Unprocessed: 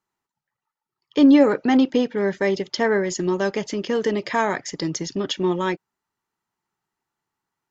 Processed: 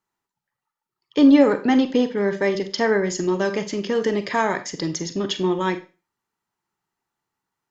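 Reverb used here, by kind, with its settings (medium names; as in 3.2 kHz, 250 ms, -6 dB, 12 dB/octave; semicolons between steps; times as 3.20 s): Schroeder reverb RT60 0.33 s, combs from 32 ms, DRR 9.5 dB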